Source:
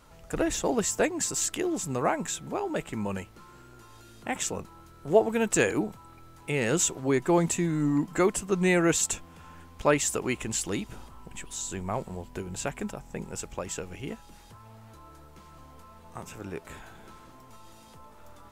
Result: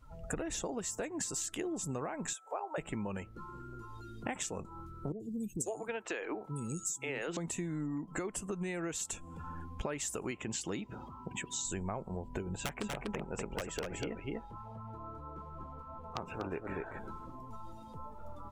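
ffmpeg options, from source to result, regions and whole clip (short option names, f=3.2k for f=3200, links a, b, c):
-filter_complex "[0:a]asettb=1/sr,asplit=3[a][b][c];[a]atrim=end=2.334[d];[b]atrim=start=2.33:end=2.78,asetpts=PTS-STARTPTS,afade=t=in:d=0.004:c=qsin,afade=t=out:st=0.446:d=0.004:c=qsin,highpass=f=570:w=0.5412,highpass=f=570:w=1.3066,equalizer=f=4k:w=0.67:g=-7.5[e];[c]atrim=start=2.776[f];[d][e]acrossfade=d=0.004:c1=hsin:c2=qsin[g];[g][f]acrossfade=d=0.004:c1=qsin:c2=hsin,asettb=1/sr,asplit=3[h][i][j];[h]atrim=end=5.124[k];[i]atrim=start=5.12:end=7.37,asetpts=PTS-STARTPTS,afade=t=in:d=0.004:c=qsin,afade=t=out:st=2.246:d=0.004:c=qsin,lowshelf=f=230:g=-11.5,acrossover=split=250|5000[l][m][n];[n]adelay=80[o];[m]adelay=540[p];[l][p][o]amix=inputs=3:normalize=0,atrim=end_sample=99225[q];[j]atrim=start=7.366[r];[k][q]acrossfade=d=0.004:c1=hsin:c2=qsin[s];[s][r]acrossfade=d=0.004:c1=qsin:c2=hsin,asettb=1/sr,asplit=3[t][u][v];[t]atrim=end=10.314[w];[u]atrim=start=10.31:end=11.65,asetpts=PTS-STARTPTS,afade=t=in:d=0.004:c=qsin,afade=t=out:st=1.336:d=0.004:c=qsin,highpass=100,equalizer=f=10k:t=o:w=0.62:g=-11[x];[v]atrim=start=11.646[y];[w][x]acrossfade=d=0.004:c1=hsin:c2=qsin[z];[z][y]acrossfade=d=0.004:c1=qsin:c2=hsin,asettb=1/sr,asplit=3[aa][ab][ac];[aa]atrim=end=12.564[ad];[ab]atrim=start=12.56:end=16.99,asetpts=PTS-STARTPTS,afade=t=in:d=0.004:c=qsin,afade=t=out:st=4.426:d=0.004:c=qsin,bass=f=250:g=-5,treble=f=4k:g=-11,aeval=exprs='(mod(16.8*val(0)+1,2)-1)/16.8':c=same,aecho=1:1:244:0.668,atrim=end_sample=195363[ae];[ac]atrim=start=16.986[af];[ad][ae]acrossfade=d=0.004:c1=hsin:c2=qsin[ag];[ag][af]acrossfade=d=0.004:c1=qsin:c2=hsin,afftdn=nr=20:nf=-48,alimiter=limit=-19dB:level=0:latency=1:release=159,acompressor=threshold=-40dB:ratio=12,volume=5.5dB"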